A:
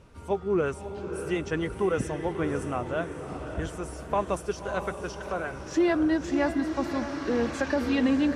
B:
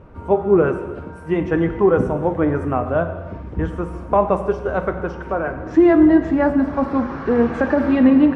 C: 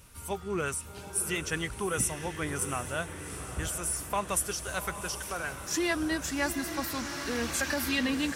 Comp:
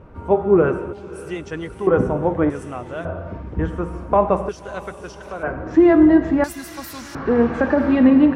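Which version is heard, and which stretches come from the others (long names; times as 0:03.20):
B
0:00.93–0:01.87: punch in from A
0:02.50–0:03.05: punch in from A
0:04.49–0:05.43: punch in from A
0:06.44–0:07.15: punch in from C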